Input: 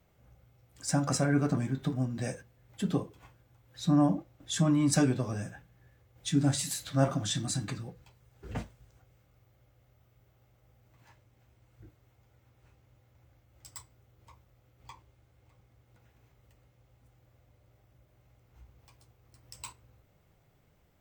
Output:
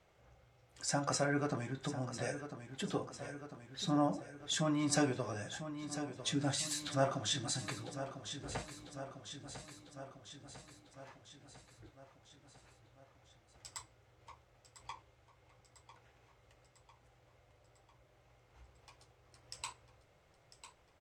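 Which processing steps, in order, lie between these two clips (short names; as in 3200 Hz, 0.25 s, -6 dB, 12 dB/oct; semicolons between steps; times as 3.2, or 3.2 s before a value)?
LPF 7900 Hz 12 dB/oct; bell 240 Hz -6.5 dB 0.67 oct; feedback echo 0.999 s, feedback 57%, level -13 dB; in parallel at 0 dB: compressor, threshold -42 dBFS, peak gain reduction 20 dB; on the sum: tone controls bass -9 dB, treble -1 dB; gain -3 dB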